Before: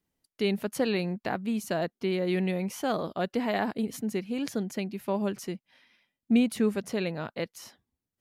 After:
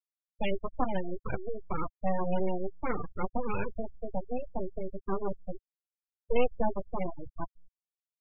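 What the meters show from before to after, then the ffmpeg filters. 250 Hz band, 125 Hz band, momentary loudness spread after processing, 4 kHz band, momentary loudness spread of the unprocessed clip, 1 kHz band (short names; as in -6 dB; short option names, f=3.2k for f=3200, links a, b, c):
-9.5 dB, -5.0 dB, 10 LU, under -10 dB, 9 LU, 0.0 dB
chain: -filter_complex "[0:a]asplit=2[a][b];[b]adelay=16,volume=-6.5dB[c];[a][c]amix=inputs=2:normalize=0,aeval=exprs='abs(val(0))':c=same,afftfilt=real='re*gte(hypot(re,im),0.0631)':imag='im*gte(hypot(re,im),0.0631)':win_size=1024:overlap=0.75"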